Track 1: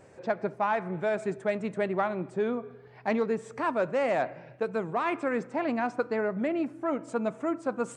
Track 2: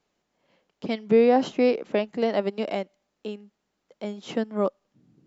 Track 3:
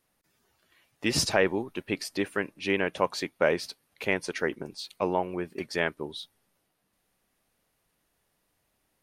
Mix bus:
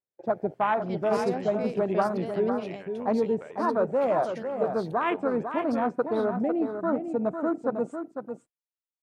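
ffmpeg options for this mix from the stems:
-filter_complex "[0:a]afwtdn=0.0282,volume=2.5dB,asplit=2[a][b];[b]volume=-7.5dB[c];[1:a]volume=-13.5dB[d];[2:a]acompressor=threshold=-28dB:ratio=6,volume=-13.5dB,asplit=2[e][f];[f]volume=-18.5dB[g];[c][g]amix=inputs=2:normalize=0,aecho=0:1:500:1[h];[a][d][e][h]amix=inputs=4:normalize=0,agate=range=-33dB:threshold=-43dB:ratio=3:detection=peak"

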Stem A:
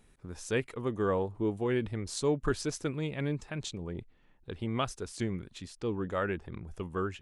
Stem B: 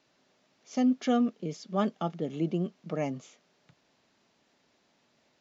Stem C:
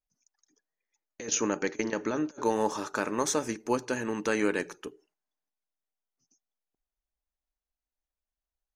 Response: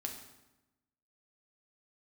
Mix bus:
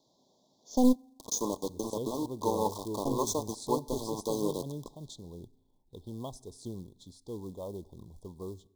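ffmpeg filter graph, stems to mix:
-filter_complex "[0:a]adelay=1450,volume=-8dB,asplit=2[a][b];[b]volume=-16.5dB[c];[1:a]aeval=exprs='0.178*(cos(1*acos(clip(val(0)/0.178,-1,1)))-cos(1*PI/2))+0.0562*(cos(2*acos(clip(val(0)/0.178,-1,1)))-cos(2*PI/2))+0.0126*(cos(6*acos(clip(val(0)/0.178,-1,1)))-cos(6*PI/2))':c=same,volume=0.5dB,asplit=3[d][e][f];[d]atrim=end=0.96,asetpts=PTS-STARTPTS,afade=t=out:st=0.956:d=0.004:c=hsin[g];[e]atrim=start=0.96:end=3.05,asetpts=PTS-STARTPTS,volume=0[h];[f]atrim=start=3.05,asetpts=PTS-STARTPTS,afade=t=in:d=0.004:c=hsin[i];[g][h][i]concat=n=3:v=0:a=1,asplit=2[j][k];[k]volume=-21dB[l];[2:a]aeval=exprs='val(0)*gte(abs(val(0)),0.0282)':c=same,equalizer=f=1.1k:t=o:w=0.34:g=7,volume=-4.5dB,asplit=2[m][n];[n]volume=-14dB[o];[3:a]atrim=start_sample=2205[p];[c][l][o]amix=inputs=3:normalize=0[q];[q][p]afir=irnorm=-1:irlink=0[r];[a][j][m][r]amix=inputs=4:normalize=0,acrusher=bits=5:mode=log:mix=0:aa=0.000001,asuperstop=centerf=1900:order=20:qfactor=0.82"

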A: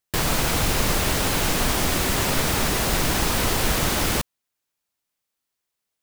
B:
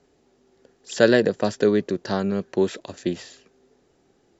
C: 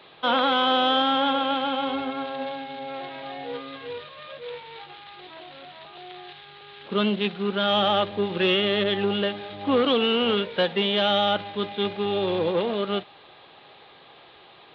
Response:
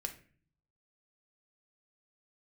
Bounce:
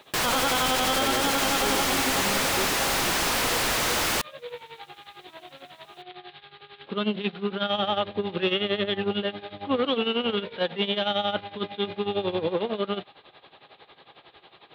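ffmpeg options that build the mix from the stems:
-filter_complex "[0:a]asplit=2[a][b];[b]highpass=f=720:p=1,volume=36dB,asoftclip=type=tanh:threshold=-8dB[c];[a][c]amix=inputs=2:normalize=0,lowpass=f=5.7k:p=1,volume=-6dB,volume=-9.5dB[d];[1:a]volume=-13dB[e];[2:a]tremolo=f=11:d=0.81,volume=1dB[f];[d][e][f]amix=inputs=3:normalize=0,alimiter=limit=-15dB:level=0:latency=1:release=15"

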